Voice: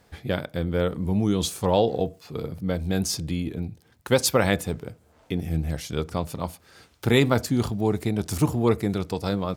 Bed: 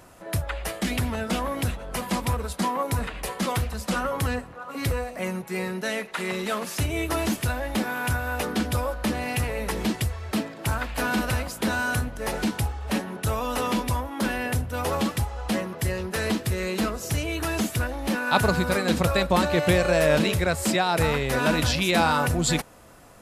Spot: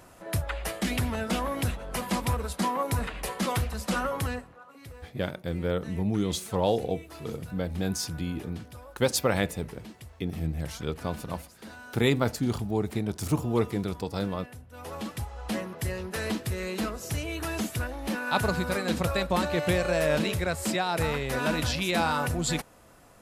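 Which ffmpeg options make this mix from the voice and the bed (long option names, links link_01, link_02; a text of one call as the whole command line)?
ffmpeg -i stem1.wav -i stem2.wav -filter_complex "[0:a]adelay=4900,volume=-4.5dB[link_01];[1:a]volume=13dB,afade=type=out:start_time=4.04:duration=0.75:silence=0.125893,afade=type=in:start_time=14.65:duration=0.92:silence=0.177828[link_02];[link_01][link_02]amix=inputs=2:normalize=0" out.wav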